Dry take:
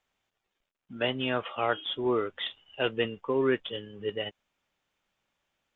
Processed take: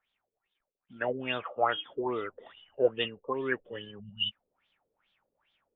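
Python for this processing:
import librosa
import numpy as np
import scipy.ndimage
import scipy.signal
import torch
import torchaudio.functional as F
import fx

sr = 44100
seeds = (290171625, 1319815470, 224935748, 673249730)

y = fx.spec_repair(x, sr, seeds[0], start_s=4.02, length_s=0.39, low_hz=220.0, high_hz=2700.0, source='after')
y = fx.rider(y, sr, range_db=4, speed_s=0.5)
y = fx.filter_lfo_lowpass(y, sr, shape='sine', hz=2.4, low_hz=430.0, high_hz=3600.0, q=7.0)
y = y * 10.0 ** (-6.0 / 20.0)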